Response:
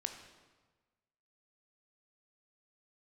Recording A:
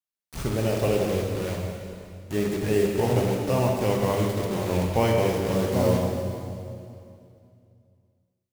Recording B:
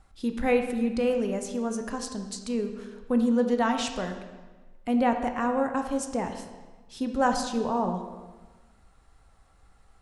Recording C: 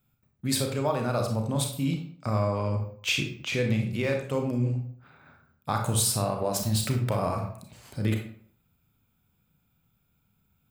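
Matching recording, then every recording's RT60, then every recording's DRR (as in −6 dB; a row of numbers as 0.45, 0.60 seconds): B; 2.5, 1.3, 0.55 seconds; −0.5, 5.0, 2.5 decibels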